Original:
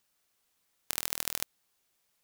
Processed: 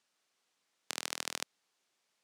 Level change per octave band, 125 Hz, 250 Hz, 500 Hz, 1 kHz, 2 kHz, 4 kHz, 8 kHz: -8.5, -2.0, 0.0, 0.0, 0.0, -0.5, -4.5 dB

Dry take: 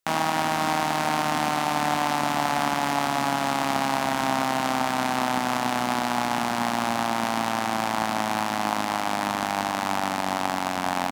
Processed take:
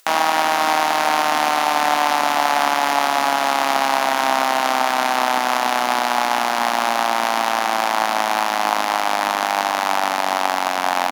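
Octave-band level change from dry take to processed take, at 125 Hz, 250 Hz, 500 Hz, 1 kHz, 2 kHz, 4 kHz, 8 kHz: under -10 dB, -2.0 dB, +6.5 dB, +7.0 dB, +7.5 dB, +7.5 dB, +6.0 dB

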